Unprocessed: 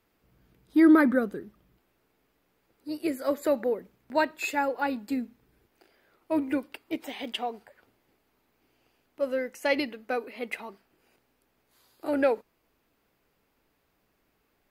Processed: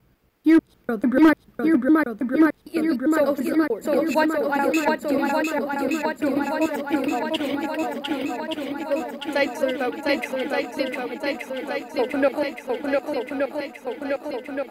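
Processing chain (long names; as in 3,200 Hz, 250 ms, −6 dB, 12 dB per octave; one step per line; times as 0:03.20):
slices reordered back to front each 148 ms, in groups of 3
feedback echo with a long and a short gap by turns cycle 1,173 ms, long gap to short 1.5 to 1, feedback 67%, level −3 dB
gain into a clipping stage and back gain 13.5 dB
level +4 dB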